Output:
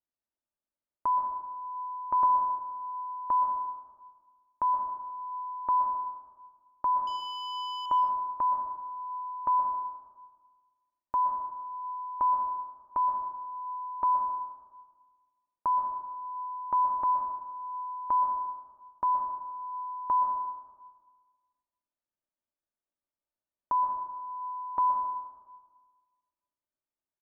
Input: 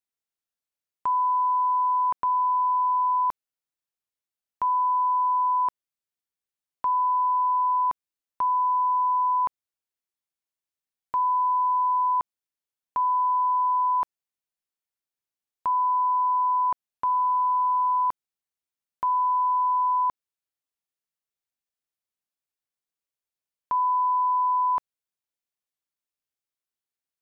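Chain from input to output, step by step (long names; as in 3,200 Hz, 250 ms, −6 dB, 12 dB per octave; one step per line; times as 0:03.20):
low-pass filter 1,100 Hz 12 dB per octave
comb filter 3.3 ms, depth 41%
0:07.07–0:07.86: leveller curve on the samples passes 1
on a send: convolution reverb RT60 1.5 s, pre-delay 113 ms, DRR 4 dB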